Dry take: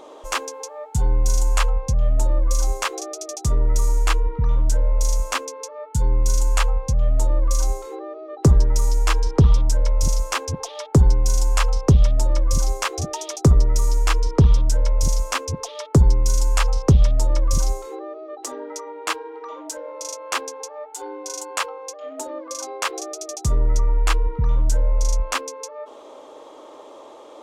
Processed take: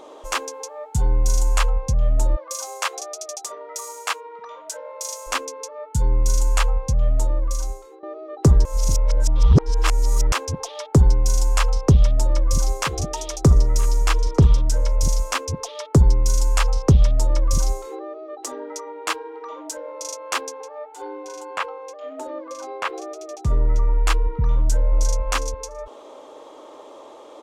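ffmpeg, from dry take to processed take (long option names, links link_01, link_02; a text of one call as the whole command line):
ffmpeg -i in.wav -filter_complex "[0:a]asplit=3[link_01][link_02][link_03];[link_01]afade=type=out:start_time=2.35:duration=0.02[link_04];[link_02]highpass=frequency=510:width=0.5412,highpass=frequency=510:width=1.3066,afade=type=in:start_time=2.35:duration=0.02,afade=type=out:start_time=5.26:duration=0.02[link_05];[link_03]afade=type=in:start_time=5.26:duration=0.02[link_06];[link_04][link_05][link_06]amix=inputs=3:normalize=0,asplit=3[link_07][link_08][link_09];[link_07]afade=type=out:start_time=12.78:duration=0.02[link_10];[link_08]aecho=1:1:977:0.126,afade=type=in:start_time=12.78:duration=0.02,afade=type=out:start_time=14.95:duration=0.02[link_11];[link_09]afade=type=in:start_time=14.95:duration=0.02[link_12];[link_10][link_11][link_12]amix=inputs=3:normalize=0,asettb=1/sr,asplit=3[link_13][link_14][link_15];[link_13]atrim=end=20.614[link_16];[link_14]atrim=start=20.61:end=23.94,asetpts=PTS-STARTPTS,afade=type=in:duration=0.004:curve=qsin,afade=type=out:start_time=3.326:duration=0.004:curve=qsin,acrossover=split=3100[link_17][link_18];[link_18]acompressor=threshold=-44dB:ratio=4:attack=1:release=60[link_19];[link_17][link_19]amix=inputs=2:normalize=0[link_20];[link_15]atrim=start=23.936[link_21];[link_16][link_20]acrossfade=duration=0.004:curve1=hsin:curve2=qsin[link_22];[link_22][link_21]acrossfade=duration=0.004:curve1=qsin:curve2=hsin,asplit=2[link_23][link_24];[link_24]afade=type=in:start_time=24.59:duration=0.01,afade=type=out:start_time=25.21:duration=0.01,aecho=0:1:330|660:0.421697|0.0632545[link_25];[link_23][link_25]amix=inputs=2:normalize=0,asplit=4[link_26][link_27][link_28][link_29];[link_26]atrim=end=8.03,asetpts=PTS-STARTPTS,afade=type=out:start_time=7.07:duration=0.96:silence=0.177828[link_30];[link_27]atrim=start=8.03:end=8.652,asetpts=PTS-STARTPTS,afade=type=in:duration=0.004:curve=hsin:silence=0.177828[link_31];[link_28]atrim=start=8.648:end=10.322,asetpts=PTS-STARTPTS,areverse[link_32];[link_29]atrim=start=10.318[link_33];[link_30][link_31]concat=n=2:v=0:a=1[link_34];[link_34][link_32]acrossfade=duration=0.004:curve1=hsin:curve2=hsin[link_35];[link_35][link_33]acrossfade=duration=0.004:curve1=hsin:curve2=hsin" out.wav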